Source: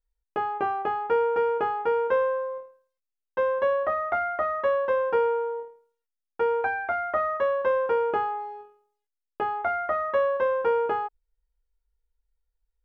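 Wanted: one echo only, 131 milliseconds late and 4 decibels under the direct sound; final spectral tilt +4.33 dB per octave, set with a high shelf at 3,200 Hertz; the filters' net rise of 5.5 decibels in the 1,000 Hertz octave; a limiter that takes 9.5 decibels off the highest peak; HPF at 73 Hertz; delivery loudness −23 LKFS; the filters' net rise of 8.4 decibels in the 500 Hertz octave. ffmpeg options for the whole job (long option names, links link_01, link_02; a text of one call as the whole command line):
ffmpeg -i in.wav -af "highpass=73,equalizer=frequency=500:width_type=o:gain=8,equalizer=frequency=1000:width_type=o:gain=4,highshelf=frequency=3200:gain=5,alimiter=limit=-15dB:level=0:latency=1,aecho=1:1:131:0.631,volume=-2dB" out.wav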